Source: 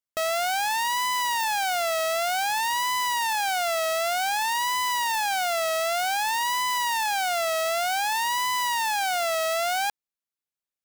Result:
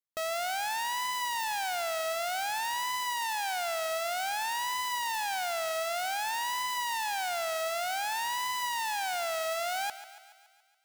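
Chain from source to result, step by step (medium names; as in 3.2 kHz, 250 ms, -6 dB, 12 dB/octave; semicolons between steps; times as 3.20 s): 3.06–3.53 s: high-pass 190 Hz 12 dB/octave; thinning echo 141 ms, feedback 61%, high-pass 360 Hz, level -14 dB; trim -7 dB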